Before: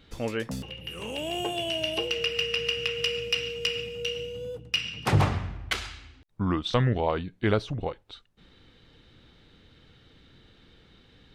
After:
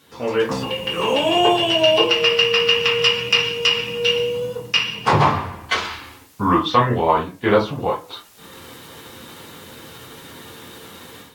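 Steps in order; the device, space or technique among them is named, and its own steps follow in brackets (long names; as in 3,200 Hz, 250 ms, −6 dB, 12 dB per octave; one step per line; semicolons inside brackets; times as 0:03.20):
filmed off a television (band-pass filter 180–6,500 Hz; parametric band 1,000 Hz +11 dB 0.42 octaves; convolution reverb RT60 0.30 s, pre-delay 3 ms, DRR −4 dB; white noise bed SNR 33 dB; automatic gain control gain up to 13 dB; level −1 dB; AAC 64 kbit/s 44,100 Hz)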